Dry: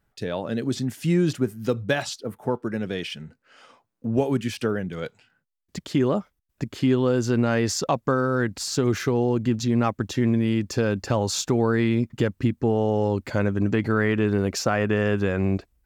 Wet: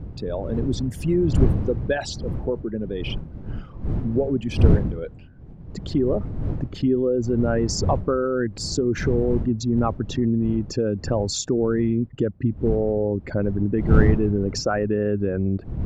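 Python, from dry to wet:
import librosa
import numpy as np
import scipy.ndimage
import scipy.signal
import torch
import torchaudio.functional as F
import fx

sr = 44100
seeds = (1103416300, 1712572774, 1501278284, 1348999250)

y = fx.envelope_sharpen(x, sr, power=2.0)
y = fx.dmg_wind(y, sr, seeds[0], corner_hz=130.0, level_db=-26.0)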